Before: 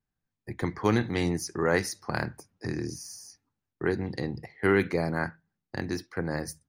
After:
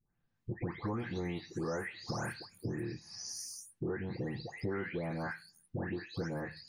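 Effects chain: delay that grows with frequency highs late, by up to 402 ms; treble shelf 5.6 kHz -9.5 dB; compression 6:1, threshold -42 dBFS, peak gain reduction 20 dB; trim +6.5 dB

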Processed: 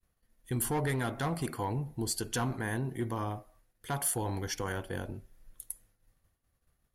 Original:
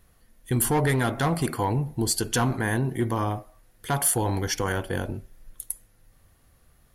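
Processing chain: expander -51 dBFS; trim -8.5 dB

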